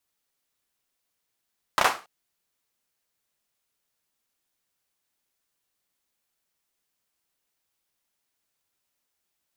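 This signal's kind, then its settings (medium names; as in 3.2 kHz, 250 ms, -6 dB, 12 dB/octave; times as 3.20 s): hand clap length 0.28 s, bursts 3, apart 32 ms, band 960 Hz, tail 0.31 s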